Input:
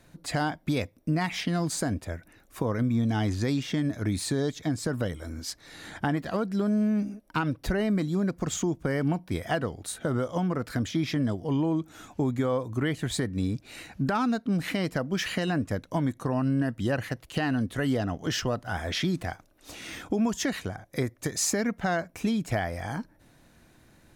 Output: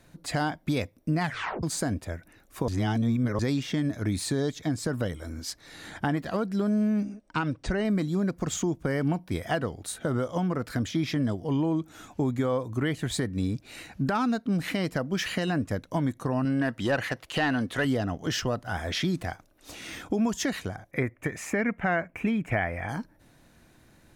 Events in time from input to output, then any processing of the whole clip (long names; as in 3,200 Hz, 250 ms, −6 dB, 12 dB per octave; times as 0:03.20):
0:01.22: tape stop 0.41 s
0:02.68–0:03.39: reverse
0:07.03–0:07.85: Chebyshev low-pass filter 9,300 Hz, order 8
0:16.45–0:17.85: mid-hump overdrive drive 13 dB, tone 4,100 Hz, clips at −15 dBFS
0:20.91–0:22.89: high shelf with overshoot 3,200 Hz −11 dB, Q 3